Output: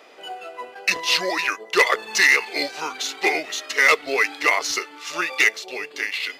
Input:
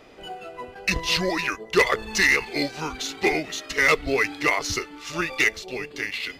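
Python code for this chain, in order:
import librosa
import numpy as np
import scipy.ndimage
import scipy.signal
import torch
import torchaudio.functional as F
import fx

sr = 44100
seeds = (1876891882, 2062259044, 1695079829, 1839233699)

y = scipy.signal.sosfilt(scipy.signal.butter(2, 490.0, 'highpass', fs=sr, output='sos'), x)
y = y * librosa.db_to_amplitude(3.5)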